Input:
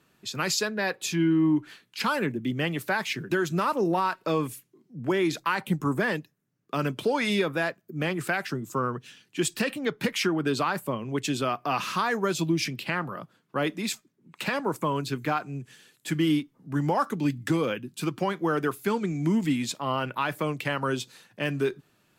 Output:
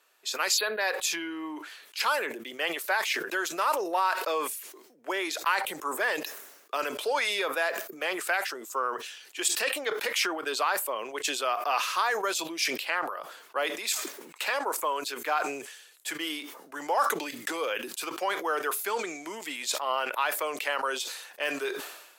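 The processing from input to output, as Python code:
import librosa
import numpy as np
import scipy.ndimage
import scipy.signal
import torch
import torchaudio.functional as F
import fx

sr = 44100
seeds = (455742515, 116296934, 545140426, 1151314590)

y = fx.spec_erase(x, sr, start_s=0.57, length_s=0.24, low_hz=4700.0, high_hz=10000.0)
y = scipy.signal.sosfilt(scipy.signal.butter(4, 490.0, 'highpass', fs=sr, output='sos'), y)
y = fx.high_shelf(y, sr, hz=5800.0, db=5.0)
y = fx.sustainer(y, sr, db_per_s=59.0)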